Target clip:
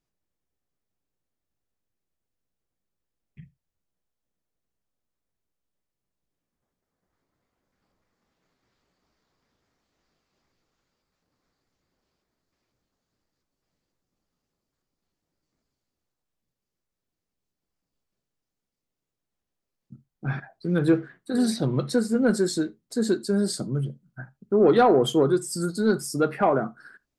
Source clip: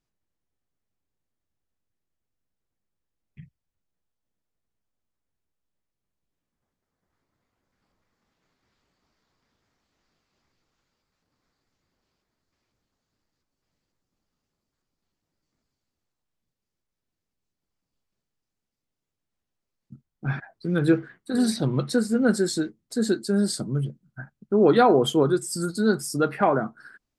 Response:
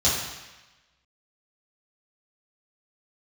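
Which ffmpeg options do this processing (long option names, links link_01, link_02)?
-filter_complex "[0:a]equalizer=frequency=430:width_type=o:width=1.5:gain=2.5,acontrast=36,asplit=2[link_01][link_02];[1:a]atrim=start_sample=2205,atrim=end_sample=3969[link_03];[link_02][link_03]afir=irnorm=-1:irlink=0,volume=-31dB[link_04];[link_01][link_04]amix=inputs=2:normalize=0,volume=-7dB"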